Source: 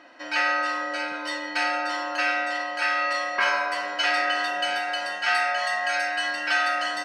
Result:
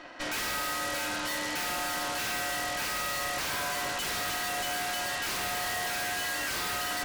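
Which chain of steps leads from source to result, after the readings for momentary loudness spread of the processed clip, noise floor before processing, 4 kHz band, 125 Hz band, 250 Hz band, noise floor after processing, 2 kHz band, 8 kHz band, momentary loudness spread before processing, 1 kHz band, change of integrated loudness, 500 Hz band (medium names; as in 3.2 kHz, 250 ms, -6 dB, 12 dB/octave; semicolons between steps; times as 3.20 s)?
1 LU, -34 dBFS, -3.5 dB, no reading, -3.0 dB, -34 dBFS, -8.5 dB, +8.5 dB, 5 LU, -8.0 dB, -6.0 dB, -6.5 dB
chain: wavefolder -23.5 dBFS; Chebyshev shaper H 5 -10 dB, 8 -7 dB, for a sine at -23.5 dBFS; trim -5 dB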